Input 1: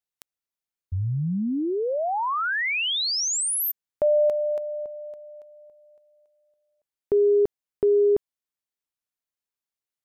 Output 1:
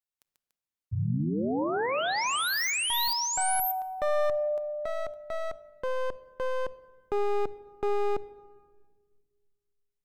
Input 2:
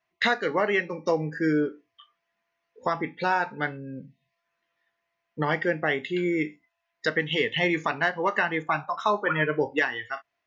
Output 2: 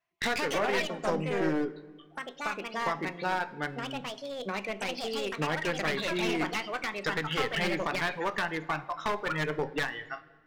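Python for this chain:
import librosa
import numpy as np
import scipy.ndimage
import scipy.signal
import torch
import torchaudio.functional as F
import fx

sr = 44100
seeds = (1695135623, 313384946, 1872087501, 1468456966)

y = np.minimum(x, 2.0 * 10.0 ** (-21.0 / 20.0) - x)
y = fx.room_shoebox(y, sr, seeds[0], volume_m3=1900.0, walls='mixed', distance_m=0.33)
y = fx.echo_pitch(y, sr, ms=185, semitones=4, count=2, db_per_echo=-3.0)
y = F.gain(torch.from_numpy(y), -5.5).numpy()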